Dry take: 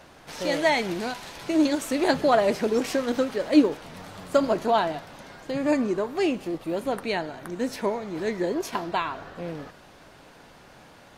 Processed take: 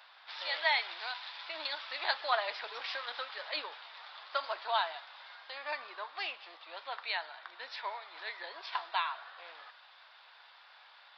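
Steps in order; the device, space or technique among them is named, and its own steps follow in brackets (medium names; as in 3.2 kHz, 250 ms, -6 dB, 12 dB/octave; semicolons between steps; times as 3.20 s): musical greeting card (resampled via 11.025 kHz; high-pass 890 Hz 24 dB/octave; peaking EQ 3.6 kHz +7 dB 0.23 oct); trim -4 dB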